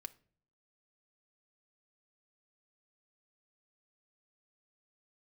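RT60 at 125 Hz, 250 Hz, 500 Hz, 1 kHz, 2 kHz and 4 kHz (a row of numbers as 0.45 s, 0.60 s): 0.80 s, 0.70 s, 0.55 s, 0.40 s, 0.40 s, 0.35 s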